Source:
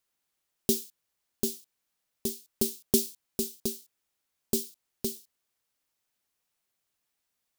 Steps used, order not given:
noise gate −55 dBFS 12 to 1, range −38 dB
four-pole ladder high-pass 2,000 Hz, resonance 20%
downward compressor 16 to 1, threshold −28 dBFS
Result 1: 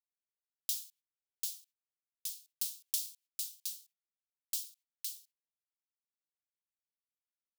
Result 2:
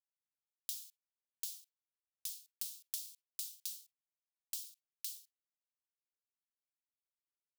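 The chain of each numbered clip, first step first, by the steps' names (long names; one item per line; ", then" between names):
noise gate, then four-pole ladder high-pass, then downward compressor
downward compressor, then noise gate, then four-pole ladder high-pass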